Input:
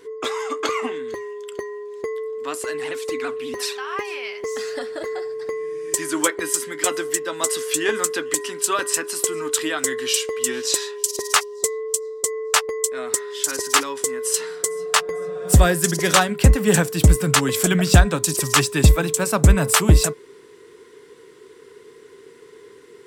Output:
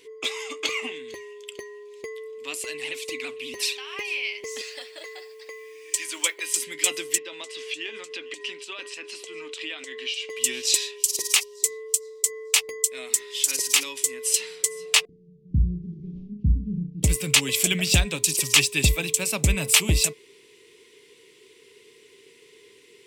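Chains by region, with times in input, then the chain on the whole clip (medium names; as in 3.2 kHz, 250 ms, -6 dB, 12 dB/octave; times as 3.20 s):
4.61–6.56 s: high-pass 580 Hz + treble shelf 10 kHz -9 dB + modulation noise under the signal 30 dB
7.18–10.30 s: compression 12:1, threshold -24 dBFS + band-pass 270–3800 Hz
11.00–14.14 s: treble shelf 7.2 kHz +7 dB + hum notches 60/120/180/240/300/360/420/480 Hz + compression 1.5:1, threshold -20 dBFS
15.05–17.03 s: CVSD coder 32 kbps + inverse Chebyshev low-pass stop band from 620 Hz, stop band 50 dB + flutter echo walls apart 5.8 m, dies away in 0.36 s
whole clip: resonant high shelf 1.9 kHz +8.5 dB, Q 3; band-stop 700 Hz, Q 23; trim -9 dB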